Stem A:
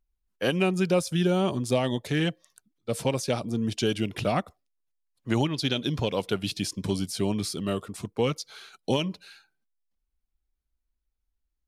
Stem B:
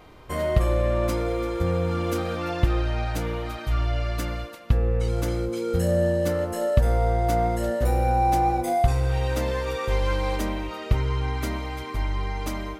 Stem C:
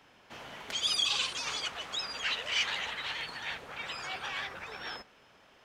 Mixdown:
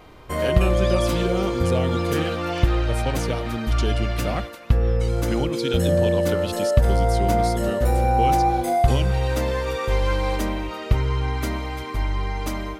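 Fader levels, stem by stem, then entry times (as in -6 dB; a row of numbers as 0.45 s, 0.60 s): -2.0 dB, +2.5 dB, -8.5 dB; 0.00 s, 0.00 s, 0.00 s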